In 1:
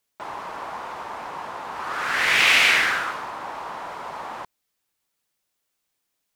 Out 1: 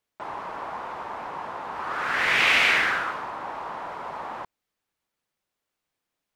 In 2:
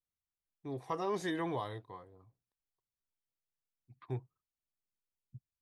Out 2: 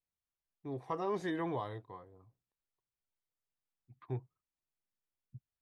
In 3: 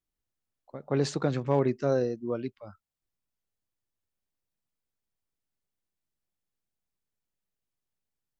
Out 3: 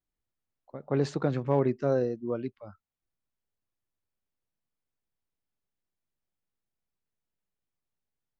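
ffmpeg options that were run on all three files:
-af "highshelf=frequency=3800:gain=-11"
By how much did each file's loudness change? −6.0, −0.5, 0.0 LU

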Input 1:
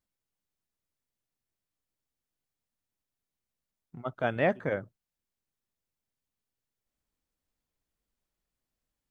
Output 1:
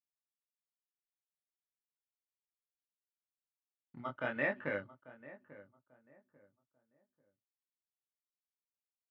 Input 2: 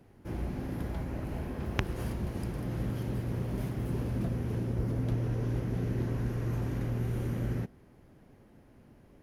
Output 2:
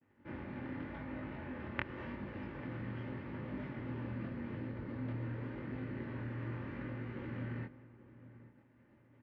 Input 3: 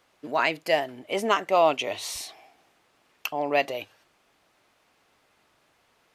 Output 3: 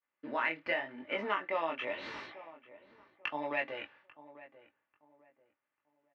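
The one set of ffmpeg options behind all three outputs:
-filter_complex "[0:a]agate=range=-33dB:threshold=-52dB:ratio=3:detection=peak,equalizer=frequency=370:width=1.4:gain=-7,asplit=2[link_01][link_02];[link_02]acrusher=samples=10:mix=1:aa=0.000001,volume=-7.5dB[link_03];[link_01][link_03]amix=inputs=2:normalize=0,acompressor=threshold=-28dB:ratio=2.5,aecho=1:1:3.4:0.3,flanger=delay=19.5:depth=5.2:speed=0.86,highpass=160,equalizer=frequency=180:width_type=q:width=4:gain=-7,equalizer=frequency=690:width_type=q:width=4:gain=-9,equalizer=frequency=1900:width_type=q:width=4:gain=5,lowpass=frequency=2900:width=0.5412,lowpass=frequency=2900:width=1.3066,asplit=2[link_04][link_05];[link_05]adelay=842,lowpass=frequency=1200:poles=1,volume=-16dB,asplit=2[link_06][link_07];[link_07]adelay=842,lowpass=frequency=1200:poles=1,volume=0.3,asplit=2[link_08][link_09];[link_09]adelay=842,lowpass=frequency=1200:poles=1,volume=0.3[link_10];[link_04][link_06][link_08][link_10]amix=inputs=4:normalize=0"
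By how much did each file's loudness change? −6.5, −9.0, −10.0 LU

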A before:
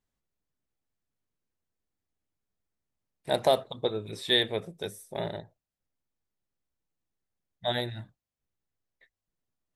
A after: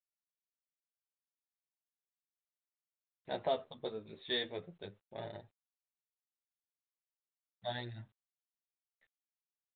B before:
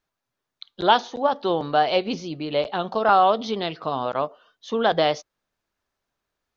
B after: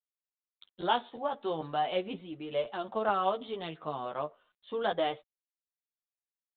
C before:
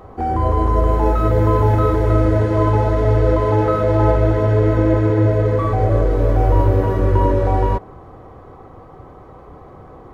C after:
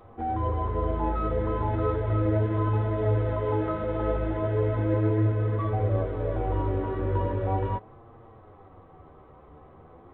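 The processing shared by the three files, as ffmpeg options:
-af "flanger=delay=8.6:depth=4.8:regen=9:speed=0.37:shape=sinusoidal,volume=-7.5dB" -ar 8000 -c:a adpcm_g726 -b:a 40k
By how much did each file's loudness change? −11.0, −11.0, −11.0 LU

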